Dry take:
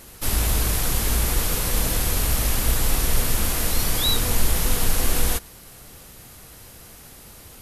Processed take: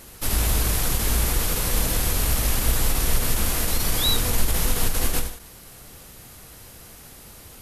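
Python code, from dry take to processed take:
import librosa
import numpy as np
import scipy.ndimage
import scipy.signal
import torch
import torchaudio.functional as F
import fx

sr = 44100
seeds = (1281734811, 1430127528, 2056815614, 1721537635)

y = fx.end_taper(x, sr, db_per_s=120.0)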